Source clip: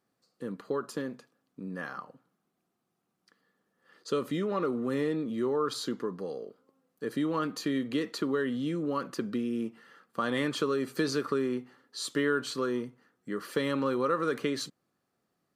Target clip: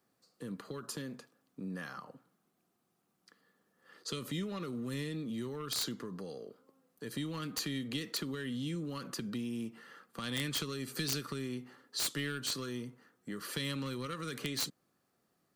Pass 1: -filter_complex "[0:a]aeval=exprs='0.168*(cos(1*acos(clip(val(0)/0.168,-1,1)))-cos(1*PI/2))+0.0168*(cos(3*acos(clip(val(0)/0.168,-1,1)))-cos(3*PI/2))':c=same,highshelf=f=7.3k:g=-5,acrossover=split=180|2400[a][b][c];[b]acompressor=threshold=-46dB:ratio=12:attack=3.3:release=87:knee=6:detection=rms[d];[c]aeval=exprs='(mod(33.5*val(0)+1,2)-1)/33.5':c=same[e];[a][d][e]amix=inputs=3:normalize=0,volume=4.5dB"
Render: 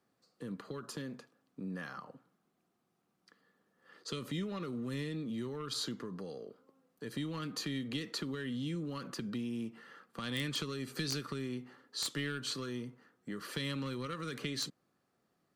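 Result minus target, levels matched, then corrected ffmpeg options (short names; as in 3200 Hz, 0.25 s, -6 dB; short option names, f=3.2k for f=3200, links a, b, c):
8000 Hz band -3.5 dB
-filter_complex "[0:a]aeval=exprs='0.168*(cos(1*acos(clip(val(0)/0.168,-1,1)))-cos(1*PI/2))+0.0168*(cos(3*acos(clip(val(0)/0.168,-1,1)))-cos(3*PI/2))':c=same,highshelf=f=7.3k:g=5,acrossover=split=180|2400[a][b][c];[b]acompressor=threshold=-46dB:ratio=12:attack=3.3:release=87:knee=6:detection=rms[d];[c]aeval=exprs='(mod(33.5*val(0)+1,2)-1)/33.5':c=same[e];[a][d][e]amix=inputs=3:normalize=0,volume=4.5dB"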